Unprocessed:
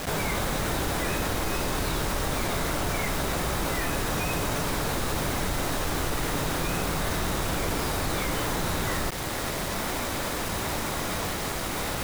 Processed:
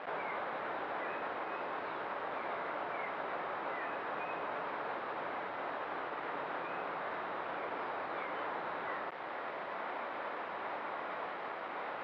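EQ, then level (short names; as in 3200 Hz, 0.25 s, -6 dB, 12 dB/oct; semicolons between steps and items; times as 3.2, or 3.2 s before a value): HPF 700 Hz 12 dB/oct; air absorption 450 m; tape spacing loss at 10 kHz 28 dB; 0.0 dB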